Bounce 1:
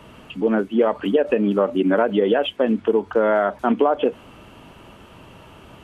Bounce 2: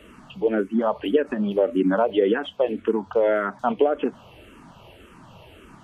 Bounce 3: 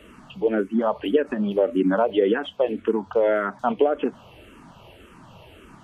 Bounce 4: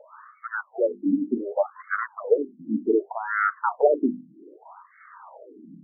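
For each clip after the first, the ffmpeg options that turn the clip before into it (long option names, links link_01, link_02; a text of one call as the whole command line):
ffmpeg -i in.wav -filter_complex "[0:a]asplit=2[link_01][link_02];[link_02]afreqshift=-1.8[link_03];[link_01][link_03]amix=inputs=2:normalize=1" out.wav
ffmpeg -i in.wav -af anull out.wav
ffmpeg -i in.wav -af "bandreject=frequency=50:width_type=h:width=6,bandreject=frequency=100:width_type=h:width=6,bandreject=frequency=150:width_type=h:width=6,bandreject=frequency=200:width_type=h:width=6,bandreject=frequency=250:width_type=h:width=6,bandreject=frequency=300:width_type=h:width=6,bandreject=frequency=350:width_type=h:width=6,bandreject=frequency=400:width_type=h:width=6,asoftclip=type=tanh:threshold=-15dB,afftfilt=real='re*between(b*sr/1024,220*pow(1600/220,0.5+0.5*sin(2*PI*0.65*pts/sr))/1.41,220*pow(1600/220,0.5+0.5*sin(2*PI*0.65*pts/sr))*1.41)':imag='im*between(b*sr/1024,220*pow(1600/220,0.5+0.5*sin(2*PI*0.65*pts/sr))/1.41,220*pow(1600/220,0.5+0.5*sin(2*PI*0.65*pts/sr))*1.41)':win_size=1024:overlap=0.75,volume=7dB" out.wav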